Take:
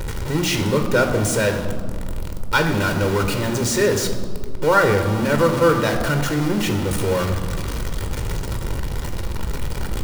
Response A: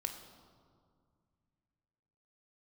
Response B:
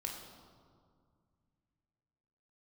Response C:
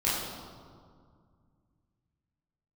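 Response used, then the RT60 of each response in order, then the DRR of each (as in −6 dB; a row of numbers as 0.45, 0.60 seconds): A; 2.1, 2.1, 2.1 seconds; 5.0, 0.0, −9.5 decibels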